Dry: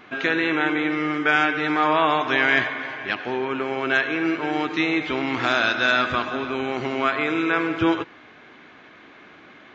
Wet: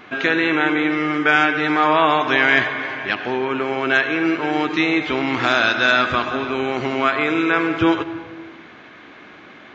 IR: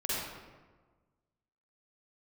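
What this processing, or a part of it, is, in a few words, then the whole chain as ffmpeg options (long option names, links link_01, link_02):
ducked reverb: -filter_complex "[0:a]asplit=3[link_01][link_02][link_03];[1:a]atrim=start_sample=2205[link_04];[link_02][link_04]afir=irnorm=-1:irlink=0[link_05];[link_03]apad=whole_len=429876[link_06];[link_05][link_06]sidechaincompress=threshold=-29dB:ratio=8:attack=5.7:release=156,volume=-15.5dB[link_07];[link_01][link_07]amix=inputs=2:normalize=0,volume=3.5dB"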